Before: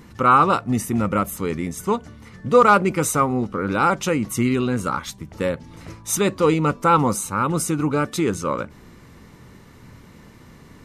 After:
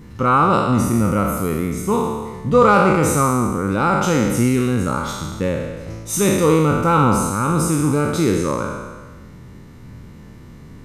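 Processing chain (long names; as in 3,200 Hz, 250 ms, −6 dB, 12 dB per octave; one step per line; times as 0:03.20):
peak hold with a decay on every bin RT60 1.41 s
low-shelf EQ 310 Hz +9.5 dB
level −3.5 dB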